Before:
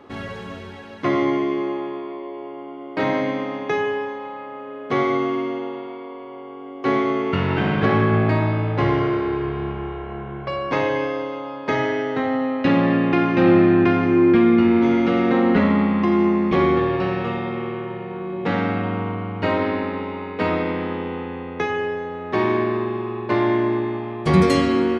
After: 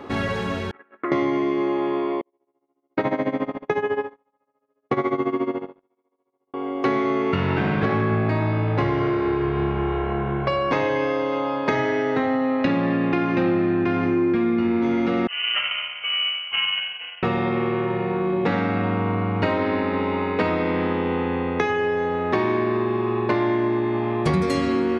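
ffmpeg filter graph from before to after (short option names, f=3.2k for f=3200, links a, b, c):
-filter_complex "[0:a]asettb=1/sr,asplit=3[a][b][c];[a]atrim=end=0.714[d];[b]atrim=start=0.71:end=1.12,asetpts=PTS-STARTPTS,afade=t=in:d=0.004:c=qsin,afade=t=out:st=0.406:d=0.004:c=qsin,agate=range=-30dB:threshold=-36dB:ratio=16:release=100:detection=peak,acompressor=threshold=-31dB:ratio=10:attack=3.2:release=140:knee=1:detection=peak,highpass=350,equalizer=f=350:t=q:w=4:g=6,equalizer=f=560:t=q:w=4:g=-3,equalizer=f=870:t=q:w=4:g=-5,equalizer=f=1.3k:t=q:w=4:g=9,equalizer=f=1.8k:t=q:w=4:g=3,lowpass=f=2.2k:w=0.5412,lowpass=f=2.2k:w=1.3066[e];[c]atrim=start=1.116[f];[d][e]acrossfade=d=0.004:c1=hsin:c2=qsin[g];[g][f]acrossfade=d=0.004:c1=qsin:c2=hsin,asettb=1/sr,asplit=3[h][i][j];[h]atrim=end=2.214[k];[i]atrim=start=2.21:end=6.54,asetpts=PTS-STARTPTS,afade=t=in:d=0.004:c=qsin,afade=t=out:st=4.326:d=0.004:c=qsin,agate=range=-42dB:threshold=-27dB:ratio=16:release=100:detection=peak,highshelf=f=3.1k:g=-11.5,tremolo=f=14:d=0.83[l];[j]atrim=start=6.536[m];[k][l]acrossfade=d=0.004:c1=hsin:c2=qsin[n];[n][m]acrossfade=d=0.004:c1=qsin:c2=hsin,asettb=1/sr,asplit=3[o][p][q];[o]atrim=end=15.274[r];[p]atrim=start=15.27:end=17.23,asetpts=PTS-STARTPTS,afade=t=in:d=0.004:c=qsin,afade=t=out:st=1.956:d=0.004:c=qsin,agate=range=-33dB:threshold=-10dB:ratio=3:release=100:detection=peak,equalizer=f=76:t=o:w=1.8:g=-13,lowpass=f=2.8k:t=q:w=0.5098,lowpass=f=2.8k:t=q:w=0.6013,lowpass=f=2.8k:t=q:w=0.9,lowpass=f=2.8k:t=q:w=2.563,afreqshift=-3300[s];[q]atrim=start=17.226[t];[r][s]acrossfade=d=0.004:c1=hsin:c2=qsin[u];[u][t]acrossfade=d=0.004:c1=qsin:c2=hsin,bandreject=f=3.1k:w=22,acompressor=threshold=-27dB:ratio=6,volume=8dB"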